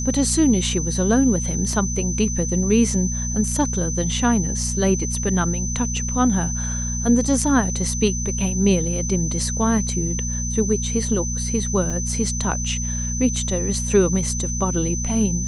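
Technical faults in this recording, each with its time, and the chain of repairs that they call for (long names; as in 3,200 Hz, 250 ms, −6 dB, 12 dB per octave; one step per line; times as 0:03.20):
mains hum 60 Hz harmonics 4 −26 dBFS
whistle 6,100 Hz −27 dBFS
0:01.73: drop-out 2.2 ms
0:11.90: drop-out 3.9 ms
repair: notch filter 6,100 Hz, Q 30
hum removal 60 Hz, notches 4
repair the gap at 0:01.73, 2.2 ms
repair the gap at 0:11.90, 3.9 ms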